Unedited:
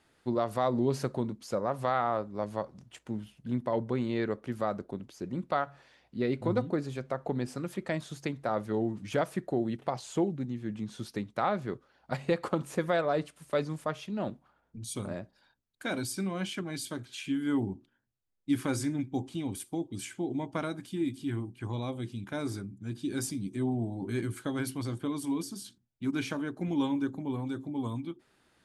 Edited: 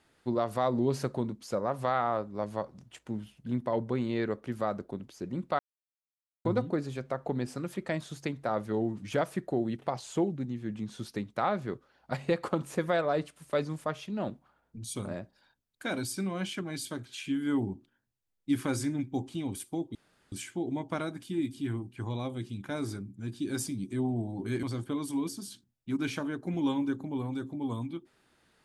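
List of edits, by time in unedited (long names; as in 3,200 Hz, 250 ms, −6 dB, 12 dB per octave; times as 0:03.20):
0:05.59–0:06.45: silence
0:19.95: splice in room tone 0.37 s
0:24.26–0:24.77: remove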